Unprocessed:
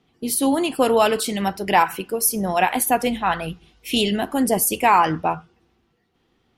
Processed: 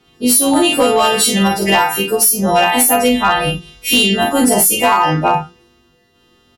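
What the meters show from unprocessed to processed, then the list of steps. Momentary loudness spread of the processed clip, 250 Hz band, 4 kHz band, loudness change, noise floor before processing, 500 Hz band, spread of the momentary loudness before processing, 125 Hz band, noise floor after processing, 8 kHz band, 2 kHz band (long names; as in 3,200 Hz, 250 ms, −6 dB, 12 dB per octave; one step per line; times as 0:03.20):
5 LU, +7.5 dB, +11.5 dB, +7.5 dB, −67 dBFS, +6.0 dB, 8 LU, +9.5 dB, −55 dBFS, +10.5 dB, +8.5 dB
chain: every partial snapped to a pitch grid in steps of 2 semitones
high-shelf EQ 5,700 Hz −6.5 dB
on a send: ambience of single reflections 20 ms −4.5 dB, 44 ms −3.5 dB, 77 ms −11 dB
on the sum: downward compressor 8 to 1, threshold −17 dBFS, peak gain reduction 10 dB
low-shelf EQ 280 Hz +2 dB
gain into a clipping stage and back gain 14 dB
level +8.5 dB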